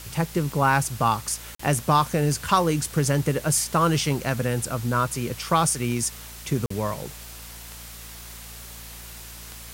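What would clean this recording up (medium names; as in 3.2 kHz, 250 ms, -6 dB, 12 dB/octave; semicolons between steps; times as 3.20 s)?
de-click; de-hum 57.3 Hz, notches 4; interpolate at 1.55/6.66 s, 44 ms; noise reduction 28 dB, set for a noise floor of -41 dBFS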